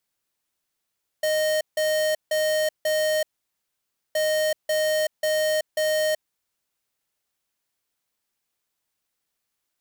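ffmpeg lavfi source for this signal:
ffmpeg -f lavfi -i "aevalsrc='0.075*(2*lt(mod(619*t,1),0.5)-1)*clip(min(mod(mod(t,2.92),0.54),0.38-mod(mod(t,2.92),0.54))/0.005,0,1)*lt(mod(t,2.92),2.16)':duration=5.84:sample_rate=44100" out.wav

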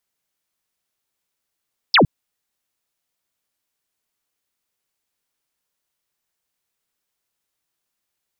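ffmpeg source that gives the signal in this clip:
ffmpeg -f lavfi -i "aevalsrc='0.355*clip(t/0.002,0,1)*clip((0.11-t)/0.002,0,1)*sin(2*PI*5500*0.11/log(110/5500)*(exp(log(110/5500)*t/0.11)-1))':duration=0.11:sample_rate=44100" out.wav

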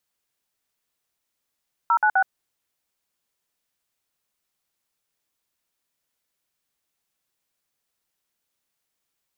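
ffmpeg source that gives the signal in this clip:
ffmpeg -f lavfi -i "aevalsrc='0.126*clip(min(mod(t,0.127),0.072-mod(t,0.127))/0.002,0,1)*(eq(floor(t/0.127),0)*(sin(2*PI*941*mod(t,0.127))+sin(2*PI*1336*mod(t,0.127)))+eq(floor(t/0.127),1)*(sin(2*PI*852*mod(t,0.127))+sin(2*PI*1477*mod(t,0.127)))+eq(floor(t/0.127),2)*(sin(2*PI*770*mod(t,0.127))+sin(2*PI*1477*mod(t,0.127))))':duration=0.381:sample_rate=44100" out.wav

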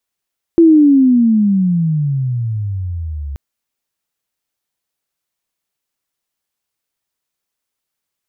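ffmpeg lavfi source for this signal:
ffmpeg -f lavfi -i "aevalsrc='pow(10,(-3.5-18*t/2.78)/20)*sin(2*PI*340*2.78/log(68/340)*(exp(log(68/340)*t/2.78)-1))':duration=2.78:sample_rate=44100" out.wav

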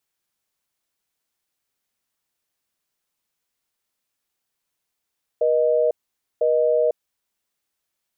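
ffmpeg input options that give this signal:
ffmpeg -f lavfi -i "aevalsrc='0.119*(sin(2*PI*480*t)+sin(2*PI*620*t))*clip(min(mod(t,1),0.5-mod(t,1))/0.005,0,1)':duration=1.5:sample_rate=44100" out.wav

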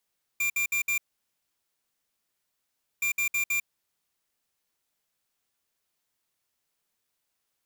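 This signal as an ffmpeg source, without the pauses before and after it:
ffmpeg -f lavfi -i "aevalsrc='0.0473*(2*lt(mod(2380*t,1),0.5)-1)*clip(min(mod(mod(t,2.62),0.16),0.1-mod(mod(t,2.62),0.16))/0.005,0,1)*lt(mod(t,2.62),0.64)':duration=5.24:sample_rate=44100" out.wav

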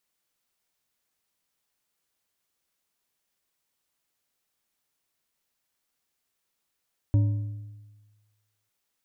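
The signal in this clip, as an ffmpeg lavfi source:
ffmpeg -f lavfi -i "aevalsrc='0.158*pow(10,-3*t/1.35)*sin(2*PI*105*t)+0.0398*pow(10,-3*t/0.996)*sin(2*PI*289.5*t)+0.01*pow(10,-3*t/0.814)*sin(2*PI*567.4*t)+0.00251*pow(10,-3*t/0.7)*sin(2*PI*938*t)':duration=1.55:sample_rate=44100" out.wav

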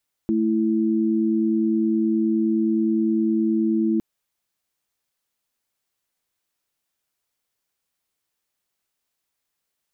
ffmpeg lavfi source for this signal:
ffmpeg -f lavfi -i "aevalsrc='0.0944*(sin(2*PI*220*t)+sin(2*PI*329.63*t))':duration=3.71:sample_rate=44100" out.wav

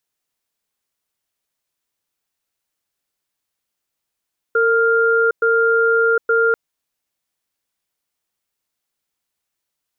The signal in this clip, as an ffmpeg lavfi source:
ffmpeg -f lavfi -i "aevalsrc='0.178*(sin(2*PI*456*t)+sin(2*PI*1400*t))*clip(min(mod(t,0.87),0.76-mod(t,0.87))/0.005,0,1)':duration=1.99:sample_rate=44100" out.wav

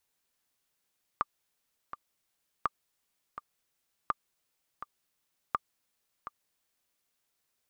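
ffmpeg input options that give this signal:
ffmpeg -f lavfi -i "aevalsrc='pow(10,(-14-12.5*gte(mod(t,2*60/83),60/83))/20)*sin(2*PI*1190*mod(t,60/83))*exp(-6.91*mod(t,60/83)/0.03)':duration=5.78:sample_rate=44100" out.wav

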